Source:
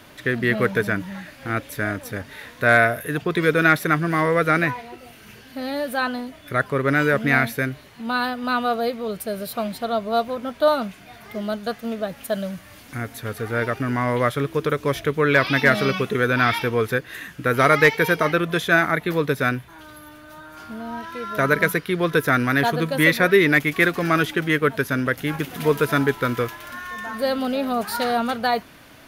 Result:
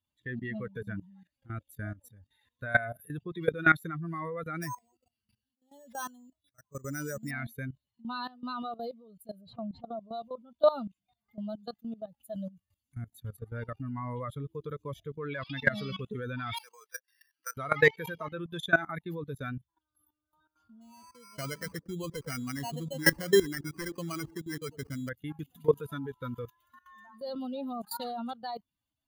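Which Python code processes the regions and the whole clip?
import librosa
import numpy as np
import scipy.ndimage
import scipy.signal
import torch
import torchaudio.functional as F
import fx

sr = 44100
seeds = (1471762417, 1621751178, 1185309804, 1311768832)

y = fx.chain(x, sr, fx.resample_bad(factor=6, down='none', up='hold'),
    fx.auto_swell(attack_ms=389.0), at=(4.62, 7.31))
y = fx.chain(y, sr, fx.spacing_loss(db_at_10k=30),
    fx.pre_swell(db_per_s=49.0), at=(9.41, 10.0))
y = fx.chain(y, sr, fx.highpass(hz=880.0, slope=12),
    fx.resample_bad(factor=6, down='filtered', up='hold'),
    fx.band_squash(depth_pct=40), at=(16.57, 17.57))
y = fx.chain(y, sr, fx.sample_hold(seeds[0], rate_hz=3600.0, jitter_pct=0),
    fx.echo_banded(ms=102, feedback_pct=58, hz=330.0, wet_db=-11.5), at=(20.81, 25.09))
y = fx.bin_expand(y, sr, power=2.0)
y = fx.peak_eq(y, sr, hz=2500.0, db=-7.5, octaves=0.29)
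y = fx.level_steps(y, sr, step_db=18)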